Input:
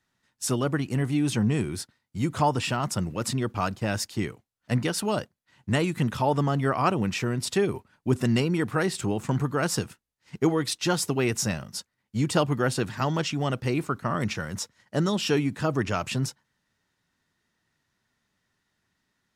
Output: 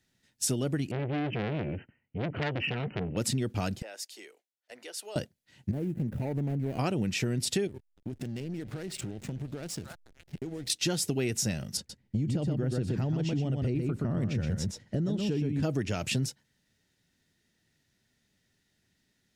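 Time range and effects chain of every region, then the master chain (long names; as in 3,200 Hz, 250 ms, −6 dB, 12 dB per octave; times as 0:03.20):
0:00.91–0:03.17: linear-phase brick-wall low-pass 3,100 Hz + saturating transformer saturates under 2,100 Hz
0:03.82–0:05.16: high-pass filter 460 Hz 24 dB per octave + downward compressor 2 to 1, threshold −52 dBFS + multiband upward and downward expander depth 70%
0:05.71–0:06.79: running median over 41 samples + parametric band 4,600 Hz −11.5 dB 2 octaves + downward compressor 4 to 1, threshold −31 dBFS
0:07.67–0:10.70: echo through a band-pass that steps 284 ms, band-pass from 1,100 Hz, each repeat 1.4 octaves, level −10 dB + downward compressor 16 to 1, threshold −35 dBFS + slack as between gear wheels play −40.5 dBFS
0:11.77–0:15.63: spectral tilt −3 dB per octave + single-tap delay 123 ms −5.5 dB + downward compressor 3 to 1, threshold −28 dBFS
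whole clip: parametric band 1,100 Hz −14.5 dB 0.94 octaves; downward compressor, threshold −30 dBFS; level +4 dB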